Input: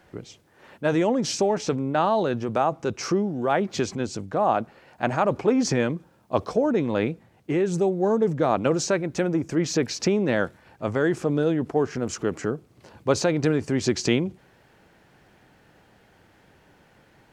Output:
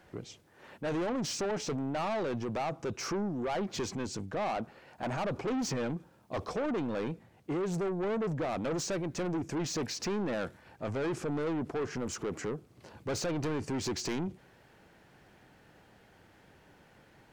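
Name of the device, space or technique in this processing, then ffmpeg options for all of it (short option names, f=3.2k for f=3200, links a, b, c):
saturation between pre-emphasis and de-emphasis: -af "highshelf=f=6.3k:g=8,asoftclip=type=tanh:threshold=-26.5dB,highshelf=f=6.3k:g=-8,volume=-3dB"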